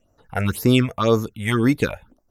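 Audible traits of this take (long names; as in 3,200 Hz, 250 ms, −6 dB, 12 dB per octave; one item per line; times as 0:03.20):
phaser sweep stages 6, 1.9 Hz, lowest notch 290–3,200 Hz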